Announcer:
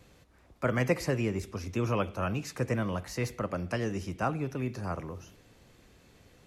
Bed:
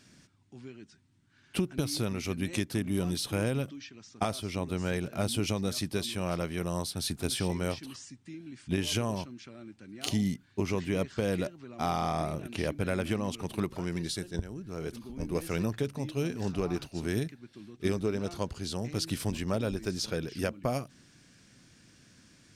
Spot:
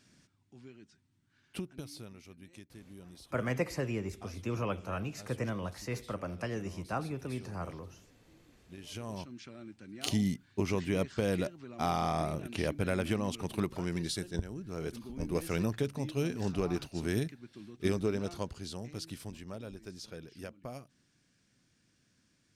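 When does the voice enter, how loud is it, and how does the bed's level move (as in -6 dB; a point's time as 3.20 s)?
2.70 s, -5.0 dB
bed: 1.36 s -6 dB
2.35 s -21 dB
8.70 s -21 dB
9.35 s -1 dB
18.12 s -1 dB
19.40 s -13 dB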